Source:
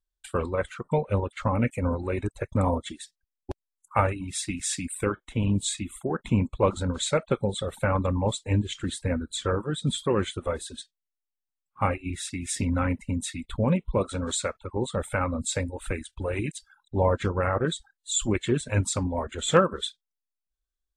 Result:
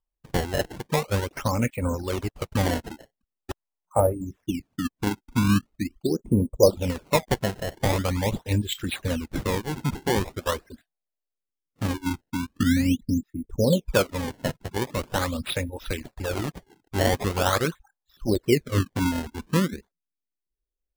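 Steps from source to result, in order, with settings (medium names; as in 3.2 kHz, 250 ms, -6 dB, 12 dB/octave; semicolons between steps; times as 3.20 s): LFO low-pass sine 0.14 Hz 260–4100 Hz; decimation with a swept rate 21×, swing 160% 0.43 Hz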